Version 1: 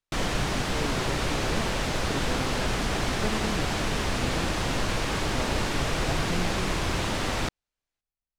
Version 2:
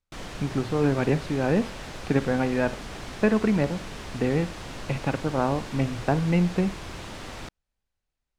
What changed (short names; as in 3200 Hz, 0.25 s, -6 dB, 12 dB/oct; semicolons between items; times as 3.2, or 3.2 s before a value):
speech +12.0 dB; background -10.5 dB